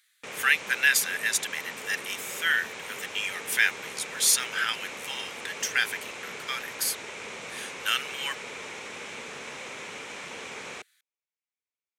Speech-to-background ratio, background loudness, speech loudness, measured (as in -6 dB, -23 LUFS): 11.0 dB, -38.0 LUFS, -27.0 LUFS